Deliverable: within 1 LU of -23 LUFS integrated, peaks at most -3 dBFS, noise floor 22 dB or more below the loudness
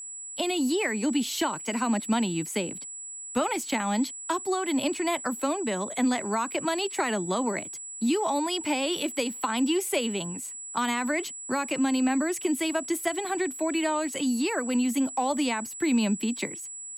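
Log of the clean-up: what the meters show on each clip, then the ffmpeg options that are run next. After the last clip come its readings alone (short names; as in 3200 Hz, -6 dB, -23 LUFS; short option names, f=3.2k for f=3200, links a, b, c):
steady tone 7800 Hz; tone level -37 dBFS; loudness -27.5 LUFS; peak -16.0 dBFS; loudness target -23.0 LUFS
-> -af "bandreject=f=7.8k:w=30"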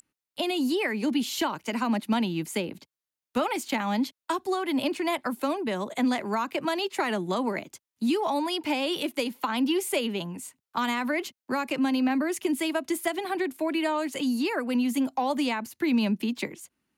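steady tone none; loudness -28.0 LUFS; peak -16.5 dBFS; loudness target -23.0 LUFS
-> -af "volume=5dB"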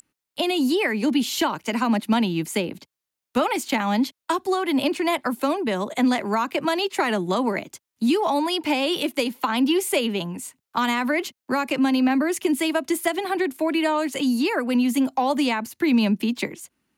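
loudness -23.0 LUFS; peak -11.5 dBFS; noise floor -86 dBFS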